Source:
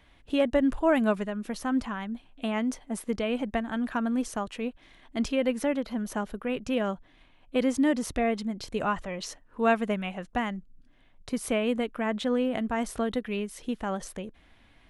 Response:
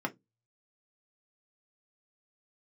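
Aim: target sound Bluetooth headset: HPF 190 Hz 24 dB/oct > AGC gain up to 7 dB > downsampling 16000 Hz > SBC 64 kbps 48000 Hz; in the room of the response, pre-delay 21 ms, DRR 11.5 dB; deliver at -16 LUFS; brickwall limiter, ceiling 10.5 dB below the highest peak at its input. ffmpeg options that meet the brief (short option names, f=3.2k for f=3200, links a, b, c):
-filter_complex "[0:a]alimiter=limit=-23dB:level=0:latency=1,asplit=2[a][b];[1:a]atrim=start_sample=2205,adelay=21[c];[b][c]afir=irnorm=-1:irlink=0,volume=-17dB[d];[a][d]amix=inputs=2:normalize=0,highpass=f=190:w=0.5412,highpass=f=190:w=1.3066,dynaudnorm=m=7dB,aresample=16000,aresample=44100,volume=17dB" -ar 48000 -c:a sbc -b:a 64k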